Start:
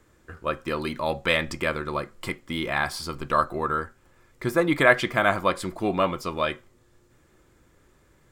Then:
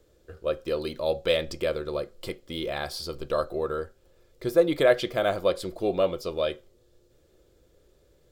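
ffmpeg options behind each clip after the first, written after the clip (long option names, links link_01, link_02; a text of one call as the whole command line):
ffmpeg -i in.wav -af "equalizer=frequency=125:width_type=o:width=1:gain=-5,equalizer=frequency=250:width_type=o:width=1:gain=-8,equalizer=frequency=500:width_type=o:width=1:gain=9,equalizer=frequency=1000:width_type=o:width=1:gain=-12,equalizer=frequency=2000:width_type=o:width=1:gain=-10,equalizer=frequency=4000:width_type=o:width=1:gain=4,equalizer=frequency=8000:width_type=o:width=1:gain=-6" out.wav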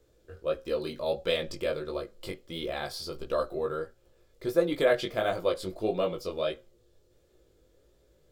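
ffmpeg -i in.wav -af "flanger=delay=16.5:depth=4.8:speed=1.5" out.wav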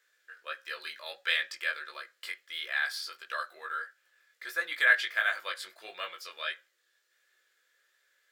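ffmpeg -i in.wav -af "highpass=frequency=1700:width_type=q:width=4.9" out.wav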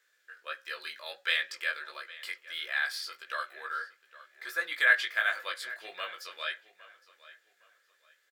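ffmpeg -i in.wav -filter_complex "[0:a]asplit=2[link_01][link_02];[link_02]adelay=812,lowpass=frequency=3900:poles=1,volume=-17.5dB,asplit=2[link_03][link_04];[link_04]adelay=812,lowpass=frequency=3900:poles=1,volume=0.31,asplit=2[link_05][link_06];[link_06]adelay=812,lowpass=frequency=3900:poles=1,volume=0.31[link_07];[link_01][link_03][link_05][link_07]amix=inputs=4:normalize=0" out.wav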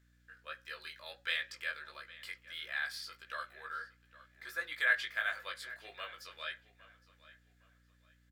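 ffmpeg -i in.wav -af "aeval=exprs='val(0)+0.000891*(sin(2*PI*60*n/s)+sin(2*PI*2*60*n/s)/2+sin(2*PI*3*60*n/s)/3+sin(2*PI*4*60*n/s)/4+sin(2*PI*5*60*n/s)/5)':channel_layout=same,volume=-6.5dB" out.wav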